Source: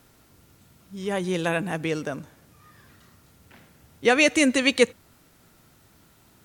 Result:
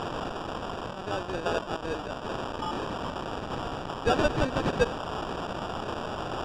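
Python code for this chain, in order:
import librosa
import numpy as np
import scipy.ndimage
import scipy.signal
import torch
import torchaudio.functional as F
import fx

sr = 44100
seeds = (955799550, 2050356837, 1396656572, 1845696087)

y = fx.delta_mod(x, sr, bps=16000, step_db=-22.5)
y = scipy.signal.sosfilt(scipy.signal.butter(2, 610.0, 'highpass', fs=sr, output='sos'), y)
y = fx.sample_hold(y, sr, seeds[0], rate_hz=2100.0, jitter_pct=0)
y = fx.air_absorb(y, sr, metres=120.0)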